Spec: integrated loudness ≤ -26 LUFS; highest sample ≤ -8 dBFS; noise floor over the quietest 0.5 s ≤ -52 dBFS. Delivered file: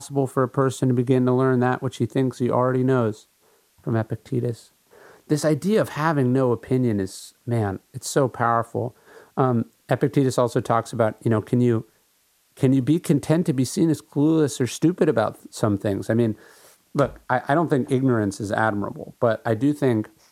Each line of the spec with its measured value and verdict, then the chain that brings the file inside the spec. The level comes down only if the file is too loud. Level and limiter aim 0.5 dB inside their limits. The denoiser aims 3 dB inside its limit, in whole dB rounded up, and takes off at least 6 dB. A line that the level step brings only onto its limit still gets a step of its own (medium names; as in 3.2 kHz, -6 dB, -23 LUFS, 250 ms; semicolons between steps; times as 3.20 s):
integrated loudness -22.5 LUFS: fail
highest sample -5.0 dBFS: fail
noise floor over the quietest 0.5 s -64 dBFS: pass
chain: trim -4 dB